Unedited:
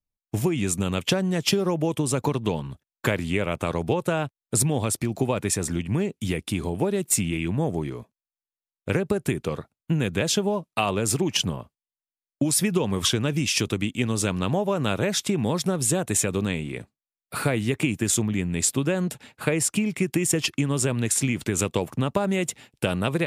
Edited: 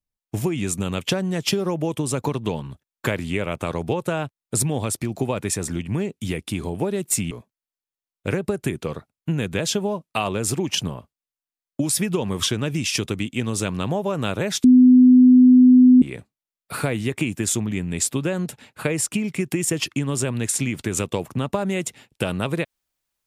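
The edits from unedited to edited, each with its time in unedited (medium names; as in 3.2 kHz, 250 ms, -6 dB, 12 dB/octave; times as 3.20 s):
7.31–7.93 s: delete
15.26–16.64 s: bleep 252 Hz -7.5 dBFS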